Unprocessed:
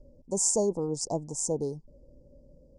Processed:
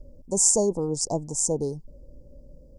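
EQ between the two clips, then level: low shelf 69 Hz +8.5 dB; high shelf 7600 Hz +7.5 dB; +3.0 dB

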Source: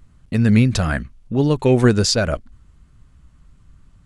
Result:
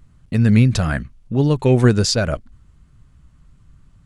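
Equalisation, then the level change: bell 130 Hz +4 dB 0.77 oct; -1.0 dB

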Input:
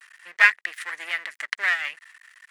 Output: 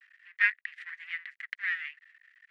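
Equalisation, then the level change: ladder high-pass 1500 Hz, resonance 40%; LPF 3200 Hz 12 dB/oct; -4.5 dB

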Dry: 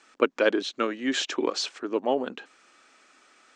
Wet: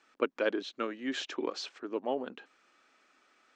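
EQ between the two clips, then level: air absorption 75 m; -7.5 dB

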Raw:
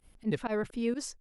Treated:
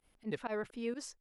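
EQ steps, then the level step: low shelf 240 Hz -11 dB; high shelf 4700 Hz -5.5 dB; -3.0 dB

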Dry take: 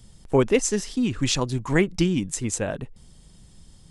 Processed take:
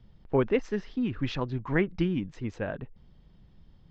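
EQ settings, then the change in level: dynamic EQ 1600 Hz, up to +4 dB, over -44 dBFS, Q 2.1; Gaussian blur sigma 2.6 samples; -5.5 dB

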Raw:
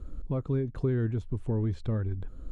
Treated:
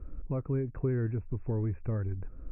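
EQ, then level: brick-wall FIR low-pass 2700 Hz; bell 220 Hz -3.5 dB 0.24 oct; -2.0 dB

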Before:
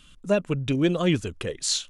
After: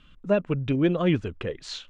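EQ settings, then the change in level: LPF 2500 Hz 12 dB/oct; 0.0 dB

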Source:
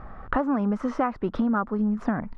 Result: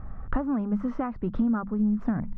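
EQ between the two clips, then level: tone controls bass +14 dB, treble -8 dB; notches 50/100/150/200 Hz; -8.0 dB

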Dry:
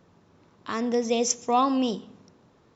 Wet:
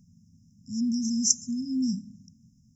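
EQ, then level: brick-wall FIR band-stop 260–5000 Hz; +4.0 dB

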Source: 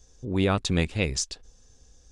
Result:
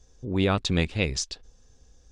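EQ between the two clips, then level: dynamic EQ 4200 Hz, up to +5 dB, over -43 dBFS, Q 0.91; high shelf 5600 Hz -9 dB; 0.0 dB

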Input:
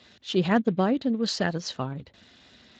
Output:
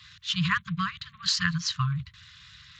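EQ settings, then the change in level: brick-wall FIR band-stop 170–1000 Hz; bell 110 Hz +3.5 dB 2.5 oct; +5.0 dB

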